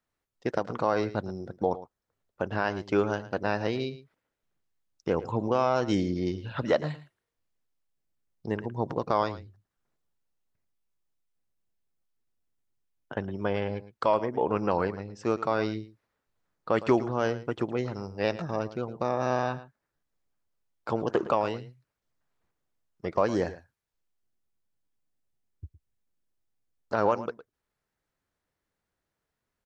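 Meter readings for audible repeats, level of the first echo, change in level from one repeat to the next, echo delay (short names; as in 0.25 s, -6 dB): 1, -15.5 dB, no steady repeat, 0.111 s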